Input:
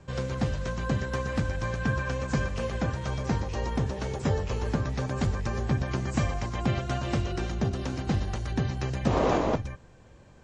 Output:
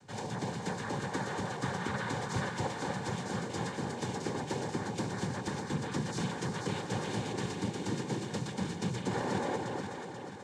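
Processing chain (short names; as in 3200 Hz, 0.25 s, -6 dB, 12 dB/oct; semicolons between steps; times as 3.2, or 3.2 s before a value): tone controls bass -4 dB, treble +6 dB; limiter -21 dBFS, peak gain reduction 9.5 dB; noise vocoder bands 6; notch comb 660 Hz; echo with dull and thin repeats by turns 0.243 s, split 930 Hz, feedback 69%, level -2 dB; gain -3 dB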